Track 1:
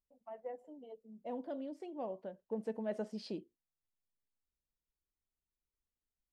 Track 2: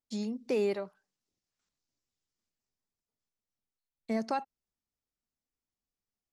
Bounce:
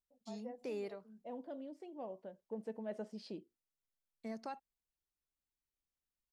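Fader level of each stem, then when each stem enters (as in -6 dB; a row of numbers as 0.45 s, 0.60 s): -4.5 dB, -12.5 dB; 0.00 s, 0.15 s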